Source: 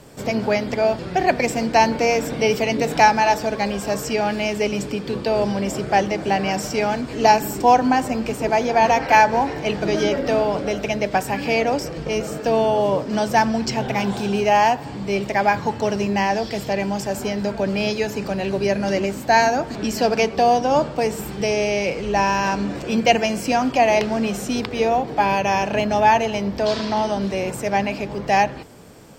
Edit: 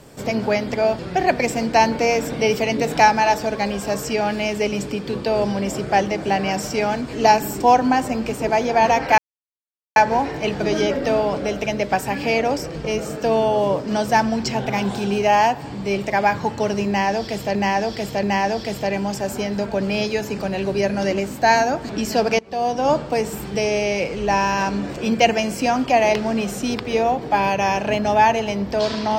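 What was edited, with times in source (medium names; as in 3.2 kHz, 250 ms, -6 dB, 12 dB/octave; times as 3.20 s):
9.18 s: insert silence 0.78 s
16.09–16.77 s: loop, 3 plays
20.25–20.75 s: fade in, from -23 dB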